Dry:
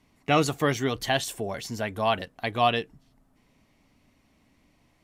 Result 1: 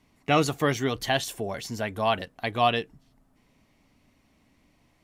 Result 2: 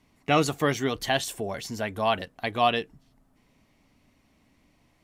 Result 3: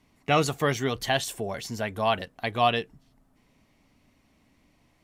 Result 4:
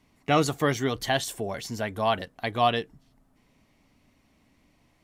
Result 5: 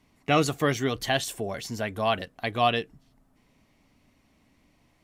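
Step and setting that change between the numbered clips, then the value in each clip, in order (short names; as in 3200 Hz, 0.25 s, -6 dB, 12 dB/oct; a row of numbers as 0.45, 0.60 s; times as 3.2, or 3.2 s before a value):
dynamic EQ, frequency: 8000, 120, 300, 2600, 900 Hz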